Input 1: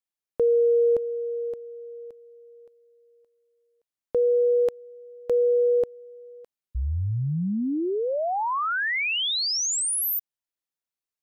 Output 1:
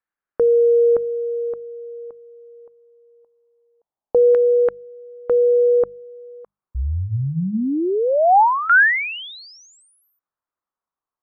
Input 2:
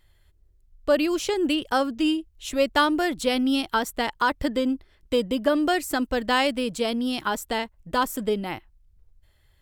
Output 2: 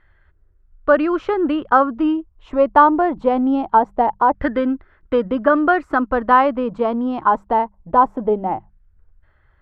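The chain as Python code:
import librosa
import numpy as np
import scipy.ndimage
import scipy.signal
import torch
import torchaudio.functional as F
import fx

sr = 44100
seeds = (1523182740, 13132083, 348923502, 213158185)

y = fx.filter_lfo_lowpass(x, sr, shape='saw_down', hz=0.23, low_hz=790.0, high_hz=1600.0, q=3.3)
y = fx.hum_notches(y, sr, base_hz=50, count=4)
y = y * librosa.db_to_amplitude(4.5)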